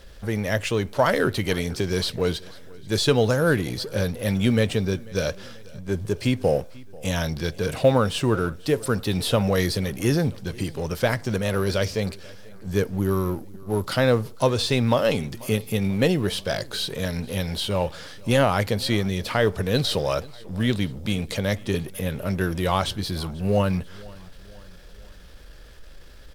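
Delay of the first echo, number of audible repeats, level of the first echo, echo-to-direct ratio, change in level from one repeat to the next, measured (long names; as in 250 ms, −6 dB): 490 ms, 3, −23.0 dB, −21.5 dB, −5.5 dB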